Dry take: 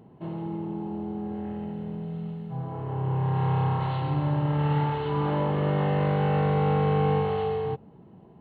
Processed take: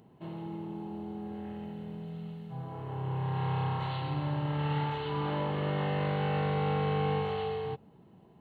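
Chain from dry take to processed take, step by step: high shelf 2200 Hz +11.5 dB; gain -7 dB

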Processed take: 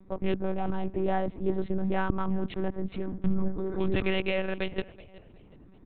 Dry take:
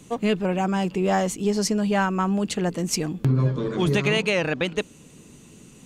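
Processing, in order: Wiener smoothing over 15 samples; low shelf 400 Hz +2.5 dB; frequency-shifting echo 0.372 s, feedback 33%, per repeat +59 Hz, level -20.5 dB; monotone LPC vocoder at 8 kHz 190 Hz; gain -6 dB

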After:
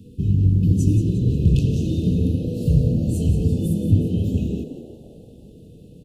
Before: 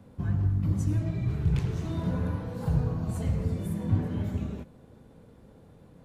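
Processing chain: FFT band-reject 500–2500 Hz; frequency-shifting echo 0.177 s, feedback 45%, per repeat +81 Hz, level -11 dB; gain +9 dB

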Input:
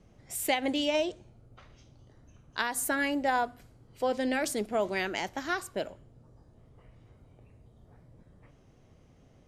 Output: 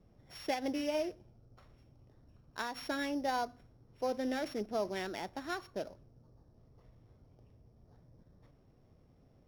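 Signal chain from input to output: sample sorter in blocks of 8 samples; LPF 2000 Hz 6 dB/oct; gain -5 dB

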